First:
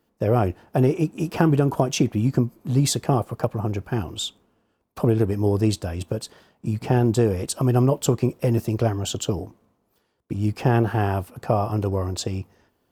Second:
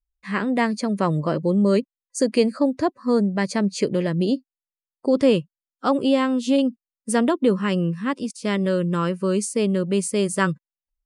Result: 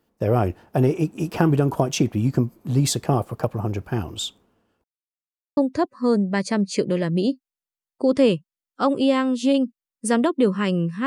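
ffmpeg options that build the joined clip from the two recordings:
ffmpeg -i cue0.wav -i cue1.wav -filter_complex "[0:a]apad=whole_dur=11.06,atrim=end=11.06,asplit=2[link_01][link_02];[link_01]atrim=end=4.84,asetpts=PTS-STARTPTS,afade=type=out:start_time=4.836:duration=0.004:curve=hsin[link_03];[link_02]atrim=start=4.84:end=5.57,asetpts=PTS-STARTPTS,volume=0[link_04];[1:a]atrim=start=2.61:end=8.1,asetpts=PTS-STARTPTS,afade=type=in:duration=0.004:curve=hsin[link_05];[link_03][link_04][link_05]concat=n=3:v=0:a=1" out.wav

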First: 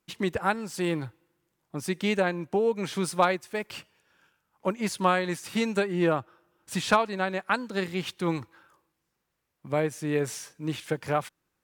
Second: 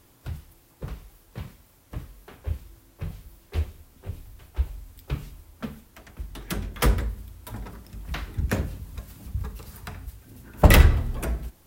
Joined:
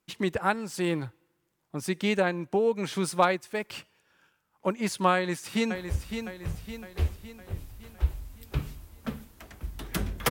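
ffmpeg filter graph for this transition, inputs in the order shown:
ffmpeg -i cue0.wav -i cue1.wav -filter_complex "[0:a]apad=whole_dur=10.3,atrim=end=10.3,atrim=end=5.752[link_01];[1:a]atrim=start=2.308:end=6.86[link_02];[link_01][link_02]acrossfade=duration=0.004:curve1=hsin:curve2=hsin,asplit=2[link_03][link_04];[link_04]afade=type=in:start_time=5.14:duration=0.01,afade=type=out:start_time=5.75:duration=0.01,aecho=0:1:560|1120|1680|2240|2800|3360:0.421697|0.210848|0.105424|0.0527121|0.026356|0.013178[link_05];[link_03][link_05]amix=inputs=2:normalize=0" out.wav

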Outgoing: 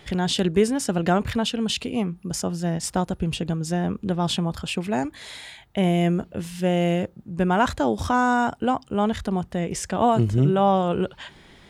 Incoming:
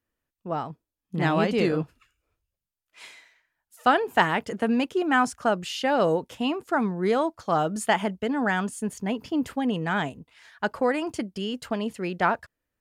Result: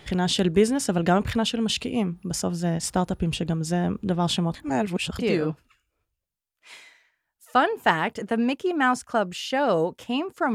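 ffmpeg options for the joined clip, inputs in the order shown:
ffmpeg -i cue0.wav -i cue1.wav -filter_complex "[0:a]apad=whole_dur=10.54,atrim=end=10.54,asplit=2[link_01][link_02];[link_01]atrim=end=4.552[link_03];[link_02]atrim=start=4.548:end=5.192,asetpts=PTS-STARTPTS,areverse[link_04];[1:a]atrim=start=1.498:end=6.85[link_05];[link_03][link_04]acrossfade=duration=0.004:curve1=hsin:curve2=hsin[link_06];[link_06][link_05]acrossfade=duration=0.004:curve1=hsin:curve2=hsin" out.wav

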